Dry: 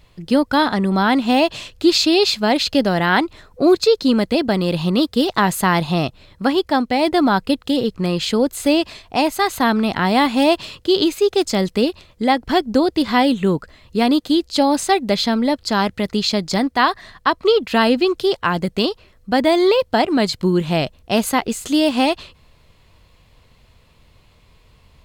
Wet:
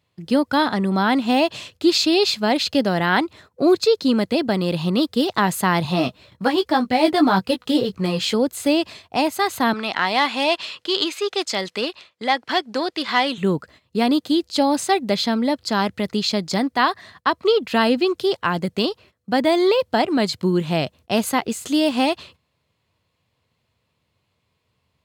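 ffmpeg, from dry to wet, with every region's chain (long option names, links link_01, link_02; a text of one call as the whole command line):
ffmpeg -i in.wav -filter_complex "[0:a]asettb=1/sr,asplit=3[link_01][link_02][link_03];[link_01]atrim=end=5.834[link_04];[link_02]atrim=start=5.83:end=8.34,asetpts=PTS-STARTPTS,afade=type=in:duration=0.004:curve=qsin,afade=type=out:start_time=2.506:duration=0.004:curve=qsin,aphaser=in_gain=1:out_gain=1:delay=4.9:decay=0.45:speed=1.9:type=triangular,asplit=2[link_05][link_06];[link_06]adelay=16,volume=-6.5dB[link_07];[link_05][link_07]amix=inputs=2:normalize=0,atrim=end_sample=110691[link_08];[link_03]atrim=start=8.336[link_09];[link_04][link_08]acrossfade=duration=0.004:curve1=hsin:curve2=qsin[link_10];[link_10][link_09]acrossfade=duration=0.004:curve1=qsin:curve2=hsin,asettb=1/sr,asplit=3[link_11][link_12][link_13];[link_11]atrim=end=9.734[link_14];[link_12]atrim=start=9.73:end=13.38,asetpts=PTS-STARTPTS,afade=type=in:duration=0.004:curve=qsin,afade=type=out:start_time=3.646:duration=0.004:curve=qsin,acontrast=37,bandpass=frequency=2400:width_type=q:width=0.52[link_15];[link_13]atrim=start=13.376[link_16];[link_14][link_15]acrossfade=duration=0.004:curve1=hsin:curve2=qsin[link_17];[link_17][link_16]acrossfade=duration=0.004:curve1=qsin:curve2=hsin,agate=range=-13dB:threshold=-42dB:ratio=16:detection=peak,highpass=frequency=84:width=0.5412,highpass=frequency=84:width=1.3066,volume=-2.5dB" out.wav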